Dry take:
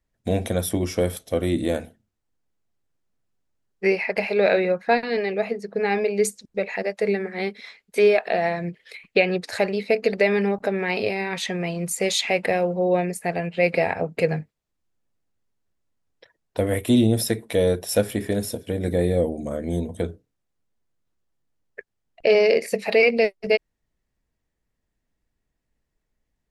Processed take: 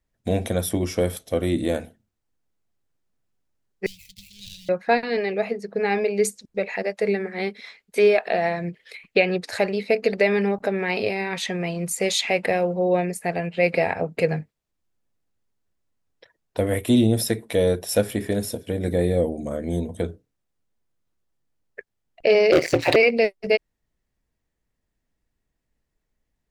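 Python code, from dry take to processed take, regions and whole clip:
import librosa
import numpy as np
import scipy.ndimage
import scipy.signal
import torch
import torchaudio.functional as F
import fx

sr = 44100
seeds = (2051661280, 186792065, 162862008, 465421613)

y = fx.chain(x, sr, fx.median_filter(points=25),
    fx.ellip_bandstop(low_hz=120.0, high_hz=3700.0, order=3, stop_db=50), at=(3.86, 4.69))
y = fx.chain(y, sr, fx.lowpass(hz=6800.0, slope=24),
    fx.leveller(passes=3),
    fx.ring_mod(carrier_hz=83.0), at=(22.52, 22.96))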